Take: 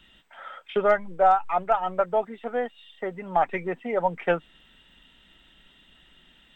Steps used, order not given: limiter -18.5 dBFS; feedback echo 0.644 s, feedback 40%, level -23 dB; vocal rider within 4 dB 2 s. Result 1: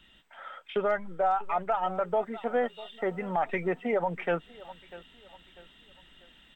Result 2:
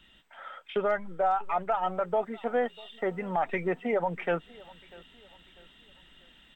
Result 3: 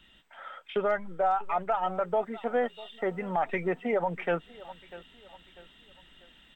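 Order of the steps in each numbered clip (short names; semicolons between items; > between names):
feedback echo > vocal rider > limiter; vocal rider > limiter > feedback echo; vocal rider > feedback echo > limiter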